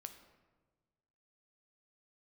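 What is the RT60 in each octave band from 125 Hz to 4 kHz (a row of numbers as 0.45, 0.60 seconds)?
1.9, 1.6, 1.5, 1.2, 1.0, 0.75 seconds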